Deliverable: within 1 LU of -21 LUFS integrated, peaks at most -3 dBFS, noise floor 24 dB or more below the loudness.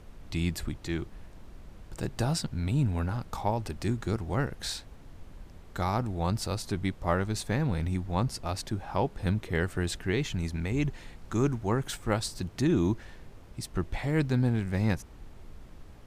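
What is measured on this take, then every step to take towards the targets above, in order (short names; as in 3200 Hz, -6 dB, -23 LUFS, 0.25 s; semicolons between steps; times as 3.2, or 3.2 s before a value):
noise floor -50 dBFS; noise floor target -55 dBFS; loudness -31.0 LUFS; peak -13.5 dBFS; loudness target -21.0 LUFS
-> noise print and reduce 6 dB; gain +10 dB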